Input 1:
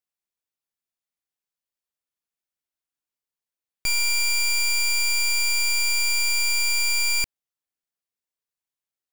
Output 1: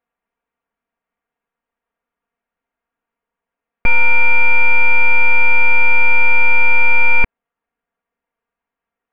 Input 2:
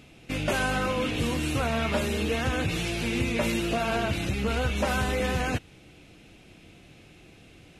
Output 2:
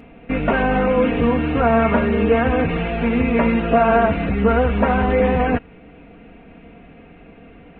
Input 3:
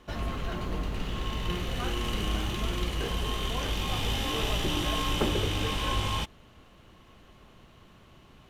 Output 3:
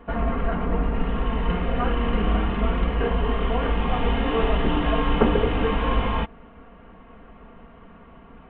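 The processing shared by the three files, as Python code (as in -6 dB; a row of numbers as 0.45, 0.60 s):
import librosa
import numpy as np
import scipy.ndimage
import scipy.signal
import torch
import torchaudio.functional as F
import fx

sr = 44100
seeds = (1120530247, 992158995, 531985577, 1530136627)

y = scipy.ndimage.gaussian_filter1d(x, 4.5, mode='constant')
y = fx.low_shelf(y, sr, hz=450.0, db=-5.0)
y = y + 0.7 * np.pad(y, (int(4.3 * sr / 1000.0), 0))[:len(y)]
y = y * 10.0 ** (-3 / 20.0) / np.max(np.abs(y))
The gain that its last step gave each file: +18.0, +12.5, +11.0 dB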